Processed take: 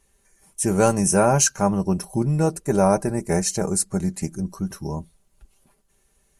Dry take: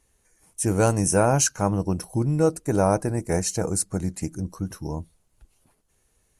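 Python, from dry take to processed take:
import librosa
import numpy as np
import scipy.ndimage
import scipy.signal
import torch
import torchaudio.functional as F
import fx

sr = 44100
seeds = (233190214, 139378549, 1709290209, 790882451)

y = x + 0.53 * np.pad(x, (int(5.1 * sr / 1000.0), 0))[:len(x)]
y = F.gain(torch.from_numpy(y), 1.5).numpy()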